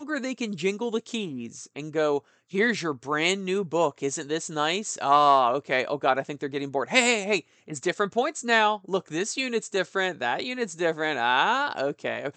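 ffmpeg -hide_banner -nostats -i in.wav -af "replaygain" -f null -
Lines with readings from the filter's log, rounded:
track_gain = +4.6 dB
track_peak = 0.447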